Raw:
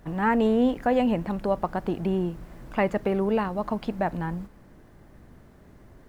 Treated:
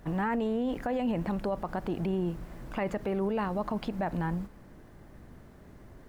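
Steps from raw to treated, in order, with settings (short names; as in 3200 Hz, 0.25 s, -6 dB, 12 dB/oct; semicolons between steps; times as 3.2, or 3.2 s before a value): limiter -22.5 dBFS, peak gain reduction 11 dB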